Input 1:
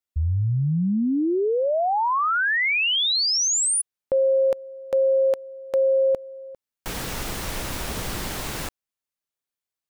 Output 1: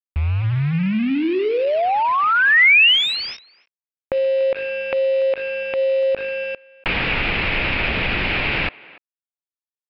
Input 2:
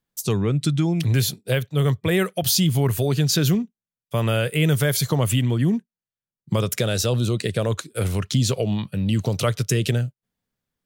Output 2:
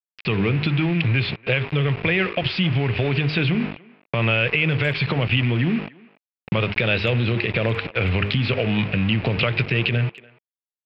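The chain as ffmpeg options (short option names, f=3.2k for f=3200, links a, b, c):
-filter_complex "[0:a]bandreject=f=50.82:t=h:w=4,bandreject=f=101.64:t=h:w=4,bandreject=f=152.46:t=h:w=4,bandreject=f=203.28:t=h:w=4,bandreject=f=254.1:t=h:w=4,bandreject=f=304.92:t=h:w=4,bandreject=f=355.74:t=h:w=4,bandreject=f=406.56:t=h:w=4,bandreject=f=457.38:t=h:w=4,adynamicequalizer=threshold=0.00562:dfrequency=1100:dqfactor=2.7:tfrequency=1100:tqfactor=2.7:attack=5:release=100:ratio=0.375:range=2:mode=cutabove:tftype=bell,acompressor=threshold=-28dB:ratio=8:attack=4.1:release=141:knee=6:detection=peak,aresample=11025,aeval=exprs='val(0)*gte(abs(val(0)),0.01)':c=same,aresample=44100,lowpass=f=2.5k:t=q:w=4.8,asplit=2[a][b];[b]adelay=290,highpass=300,lowpass=3.4k,asoftclip=type=hard:threshold=-19.5dB,volume=-21dB[c];[a][c]amix=inputs=2:normalize=0,alimiter=level_in=17.5dB:limit=-1dB:release=50:level=0:latency=1,volume=-7dB"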